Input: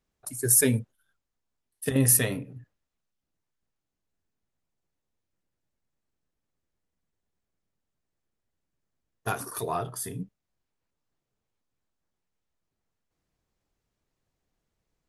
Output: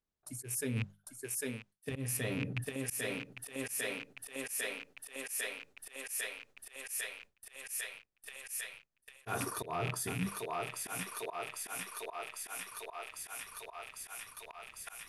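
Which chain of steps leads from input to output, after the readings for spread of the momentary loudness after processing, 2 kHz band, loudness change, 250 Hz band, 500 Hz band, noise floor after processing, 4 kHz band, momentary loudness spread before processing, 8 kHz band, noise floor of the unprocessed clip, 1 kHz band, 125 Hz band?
11 LU, +1.0 dB, −15.0 dB, −8.0 dB, −6.0 dB, −79 dBFS, 0.0 dB, 18 LU, −9.5 dB, −84 dBFS, −2.5 dB, −8.5 dB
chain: loose part that buzzes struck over −38 dBFS, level −27 dBFS
on a send: feedback echo with a high-pass in the loop 800 ms, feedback 85%, high-pass 410 Hz, level −15 dB
on the sum: noise gate with hold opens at −50 dBFS
high-shelf EQ 8,200 Hz −8 dB
mains-hum notches 50/100/150/200 Hz
speech leveller within 4 dB 2 s
volume swells 120 ms
reversed playback
downward compressor 12 to 1, threshold −43 dBFS, peak gain reduction 23 dB
reversed playback
level +9.5 dB

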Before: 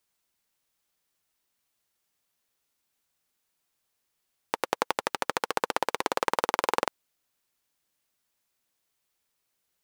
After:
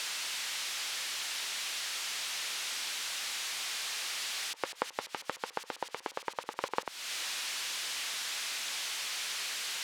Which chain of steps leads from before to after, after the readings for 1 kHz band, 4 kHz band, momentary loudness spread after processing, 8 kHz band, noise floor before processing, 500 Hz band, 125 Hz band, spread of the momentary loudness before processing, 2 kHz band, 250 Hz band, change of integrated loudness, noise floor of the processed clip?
−9.0 dB, +8.0 dB, 6 LU, +9.5 dB, −79 dBFS, −9.5 dB, −9.5 dB, 5 LU, 0.0 dB, −10.0 dB, −5.0 dB, −55 dBFS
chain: spike at every zero crossing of −19 dBFS
low-pass filter 3,200 Hz 12 dB per octave
volume swells 318 ms
level +5 dB

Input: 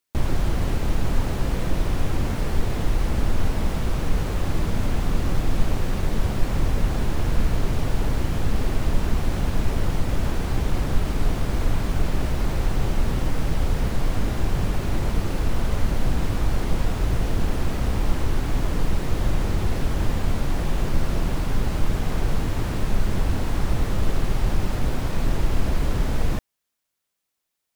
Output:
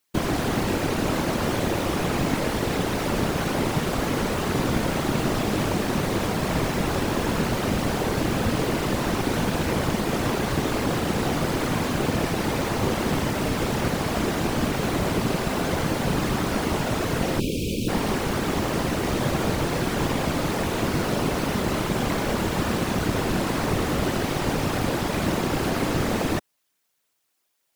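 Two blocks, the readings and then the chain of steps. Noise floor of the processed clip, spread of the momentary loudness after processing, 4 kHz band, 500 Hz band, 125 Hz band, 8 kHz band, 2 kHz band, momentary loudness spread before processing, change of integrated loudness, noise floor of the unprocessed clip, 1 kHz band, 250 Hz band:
−74 dBFS, 1 LU, +6.5 dB, +6.5 dB, −2.0 dB, +6.5 dB, +6.5 dB, 1 LU, +1.5 dB, −80 dBFS, +6.5 dB, +5.0 dB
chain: time-frequency box erased 0:17.40–0:17.89, 480–2,300 Hz
high-pass filter 160 Hz 12 dB per octave
random phases in short frames
level +6.5 dB

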